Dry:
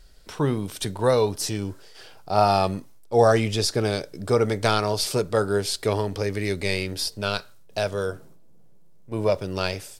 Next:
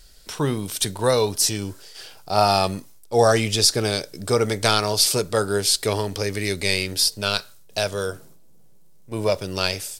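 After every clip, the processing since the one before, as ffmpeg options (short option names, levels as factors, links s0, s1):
-af "highshelf=f=2900:g=11"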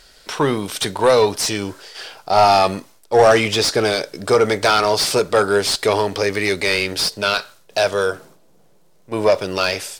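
-filter_complex "[0:a]asplit=2[s0][s1];[s1]highpass=f=720:p=1,volume=8.91,asoftclip=type=tanh:threshold=0.841[s2];[s0][s2]amix=inputs=2:normalize=0,lowpass=f=1800:p=1,volume=0.501"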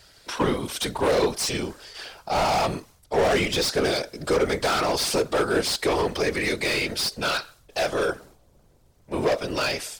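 -filter_complex "[0:a]afftfilt=real='hypot(re,im)*cos(2*PI*random(0))':imag='hypot(re,im)*sin(2*PI*random(1))':win_size=512:overlap=0.75,acrossover=split=370[s0][s1];[s1]asoftclip=type=hard:threshold=0.075[s2];[s0][s2]amix=inputs=2:normalize=0,volume=1.19"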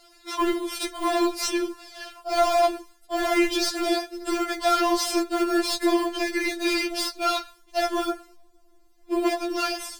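-filter_complex "[0:a]asplit=2[s0][s1];[s1]acrusher=samples=11:mix=1:aa=0.000001,volume=0.422[s2];[s0][s2]amix=inputs=2:normalize=0,afftfilt=real='re*4*eq(mod(b,16),0)':imag='im*4*eq(mod(b,16),0)':win_size=2048:overlap=0.75"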